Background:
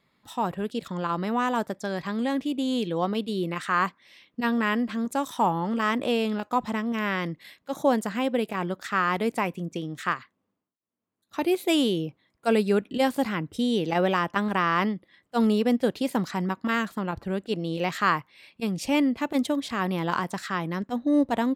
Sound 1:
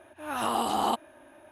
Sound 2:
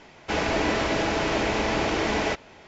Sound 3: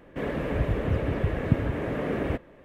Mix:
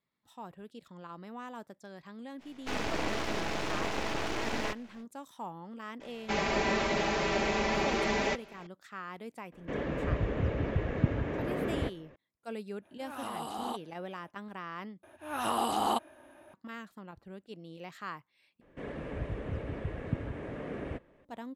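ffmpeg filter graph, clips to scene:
ffmpeg -i bed.wav -i cue0.wav -i cue1.wav -i cue2.wav -filter_complex "[2:a]asplit=2[link_01][link_02];[3:a]asplit=2[link_03][link_04];[1:a]asplit=2[link_05][link_06];[0:a]volume=-18dB[link_07];[link_01]aeval=exprs='max(val(0),0)':channel_layout=same[link_08];[link_02]aecho=1:1:5.1:0.93[link_09];[link_03]aresample=16000,aresample=44100[link_10];[link_04]aresample=22050,aresample=44100[link_11];[link_07]asplit=3[link_12][link_13][link_14];[link_12]atrim=end=15.034[link_15];[link_06]atrim=end=1.51,asetpts=PTS-STARTPTS,volume=-2.5dB[link_16];[link_13]atrim=start=16.536:end=18.614[link_17];[link_11]atrim=end=2.64,asetpts=PTS-STARTPTS,volume=-10.5dB[link_18];[link_14]atrim=start=21.246[link_19];[link_08]atrim=end=2.67,asetpts=PTS-STARTPTS,volume=-5dB,afade=type=in:duration=0.05,afade=type=out:start_time=2.62:duration=0.05,adelay=2380[link_20];[link_09]atrim=end=2.67,asetpts=PTS-STARTPTS,volume=-7.5dB,afade=type=in:duration=0.004:curve=hsin,afade=type=out:start_time=2.666:duration=0.004:curve=hsin,adelay=6000[link_21];[link_10]atrim=end=2.64,asetpts=PTS-STARTPTS,volume=-4.5dB,afade=type=in:duration=0.004:curve=hsin,afade=type=out:start_time=2.636:duration=0.004:curve=hsin,adelay=9520[link_22];[link_05]atrim=end=1.51,asetpts=PTS-STARTPTS,volume=-11dB,afade=type=in:duration=0.05,afade=type=out:start_time=1.46:duration=0.05,adelay=12810[link_23];[link_15][link_16]acrossfade=duration=0.004:curve1=hsin:curve2=hsin[link_24];[link_24][link_17]acrossfade=duration=0.004:curve1=hsin:curve2=hsin[link_25];[link_25][link_18]acrossfade=duration=0.004:curve1=hsin:curve2=hsin[link_26];[link_26][link_19]acrossfade=duration=0.004:curve1=hsin:curve2=hsin[link_27];[link_27][link_20][link_21][link_22][link_23]amix=inputs=5:normalize=0" out.wav

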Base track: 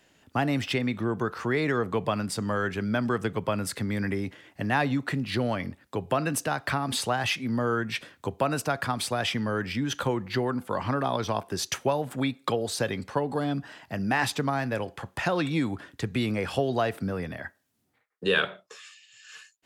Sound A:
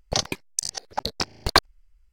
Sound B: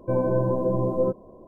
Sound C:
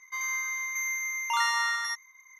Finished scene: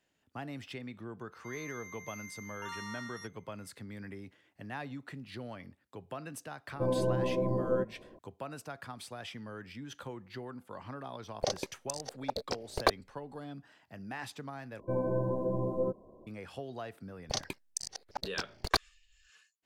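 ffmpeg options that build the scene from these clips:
ffmpeg -i bed.wav -i cue0.wav -i cue1.wav -i cue2.wav -filter_complex "[2:a]asplit=2[link_01][link_02];[1:a]asplit=2[link_03][link_04];[0:a]volume=-16dB[link_05];[link_03]equalizer=frequency=520:width=1.4:gain=13.5[link_06];[link_05]asplit=2[link_07][link_08];[link_07]atrim=end=14.804[link_09];[link_02]atrim=end=1.47,asetpts=PTS-STARTPTS,volume=-8.5dB[link_10];[link_08]atrim=start=16.266[link_11];[3:a]atrim=end=2.39,asetpts=PTS-STARTPTS,volume=-17dB,afade=type=in:duration=0.004:curve=hsin,afade=type=out:start_time=2.386:duration=0.004:curve=hsin,adelay=1320[link_12];[link_01]atrim=end=1.47,asetpts=PTS-STARTPTS,volume=-7dB,afade=type=in:duration=0.004:curve=hsin,afade=type=out:start_time=1.466:duration=0.004:curve=hsin,adelay=6720[link_13];[link_06]atrim=end=2.12,asetpts=PTS-STARTPTS,volume=-13dB,afade=type=in:duration=0.004:curve=hsin,afade=type=out:start_time=2.116:duration=0.004:curve=hsin,adelay=11310[link_14];[link_04]atrim=end=2.12,asetpts=PTS-STARTPTS,volume=-11dB,afade=type=in:duration=0.004:curve=hsin,afade=type=out:start_time=2.116:duration=0.004:curve=hsin,adelay=17180[link_15];[link_09][link_10]acrossfade=duration=0.004:curve1=hsin:curve2=hsin[link_16];[link_16][link_11]acrossfade=duration=0.004:curve1=hsin:curve2=hsin[link_17];[link_17][link_12][link_13][link_14][link_15]amix=inputs=5:normalize=0" out.wav

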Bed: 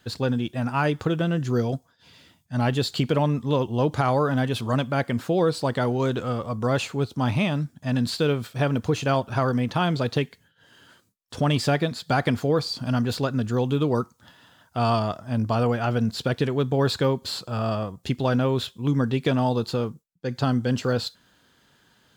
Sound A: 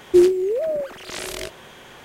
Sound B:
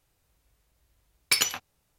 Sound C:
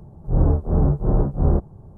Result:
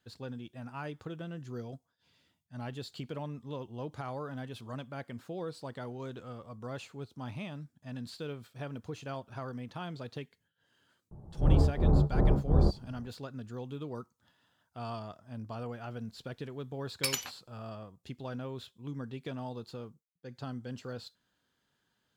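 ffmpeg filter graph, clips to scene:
ffmpeg -i bed.wav -i cue0.wav -i cue1.wav -i cue2.wav -filter_complex "[0:a]volume=-17.5dB[link_01];[3:a]atrim=end=1.97,asetpts=PTS-STARTPTS,volume=-6.5dB,afade=type=in:duration=0.004:curve=hsin,afade=type=out:start_time=1.966:duration=0.004:curve=hsin,adelay=11110[link_02];[2:a]atrim=end=1.98,asetpts=PTS-STARTPTS,volume=-8.5dB,afade=type=in:duration=0.004:curve=hsin,afade=type=out:start_time=1.976:duration=0.004:curve=hsin,adelay=693252S[link_03];[link_01][link_02][link_03]amix=inputs=3:normalize=0" out.wav

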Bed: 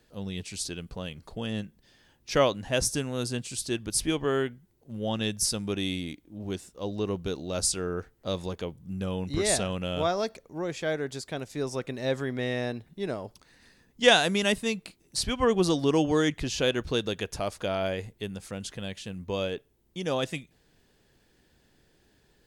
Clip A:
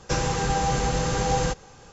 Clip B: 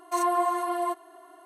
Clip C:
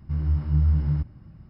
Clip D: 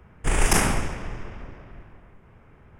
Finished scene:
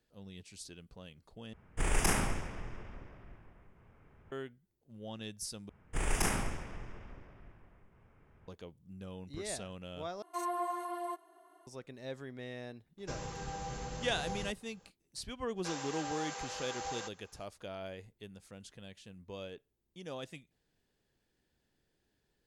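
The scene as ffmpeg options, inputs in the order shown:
ffmpeg -i bed.wav -i cue0.wav -i cue1.wav -i cue2.wav -i cue3.wav -filter_complex "[4:a]asplit=2[link_01][link_02];[1:a]asplit=2[link_03][link_04];[0:a]volume=-14.5dB[link_05];[link_04]highpass=680[link_06];[link_05]asplit=4[link_07][link_08][link_09][link_10];[link_07]atrim=end=1.534[link_11];[link_01]atrim=end=2.79,asetpts=PTS-STARTPTS,volume=-9.5dB[link_12];[link_08]atrim=start=4.316:end=5.694[link_13];[link_02]atrim=end=2.79,asetpts=PTS-STARTPTS,volume=-11.5dB[link_14];[link_09]atrim=start=8.476:end=10.224[link_15];[2:a]atrim=end=1.45,asetpts=PTS-STARTPTS,volume=-11dB[link_16];[link_10]atrim=start=11.666[link_17];[link_03]atrim=end=1.92,asetpts=PTS-STARTPTS,volume=-17.5dB,afade=type=in:duration=0.004:curve=hsin,afade=type=out:start_time=1.916:duration=0.004:curve=hsin,adelay=12980[link_18];[link_06]atrim=end=1.92,asetpts=PTS-STARTPTS,volume=-13dB,afade=type=in:duration=0.05,afade=type=out:start_time=1.87:duration=0.05,adelay=15550[link_19];[link_11][link_12]acrossfade=duration=0.004:curve1=hsin:curve2=hsin[link_20];[link_20][link_13]acrossfade=duration=0.004:curve1=hsin:curve2=hsin[link_21];[link_21][link_14]acrossfade=duration=0.004:curve1=hsin:curve2=hsin[link_22];[link_22][link_15]acrossfade=duration=0.004:curve1=hsin:curve2=hsin[link_23];[link_23][link_16]acrossfade=duration=0.004:curve1=hsin:curve2=hsin[link_24];[link_24][link_17]acrossfade=duration=0.004:curve1=hsin:curve2=hsin[link_25];[link_25][link_18][link_19]amix=inputs=3:normalize=0" out.wav

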